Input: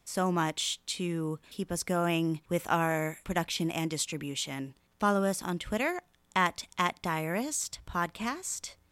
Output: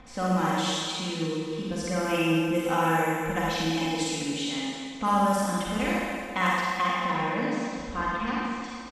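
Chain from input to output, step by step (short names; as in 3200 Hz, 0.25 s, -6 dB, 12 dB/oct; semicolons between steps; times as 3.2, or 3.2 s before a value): upward compressor, threshold -31 dBFS; 6.59–8.61 LPF 4200 Hz 12 dB/oct; low-pass opened by the level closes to 2000 Hz, open at -23 dBFS; comb 3.9 ms, depth 76%; reverb RT60 2.1 s, pre-delay 38 ms, DRR -6 dB; gain -4 dB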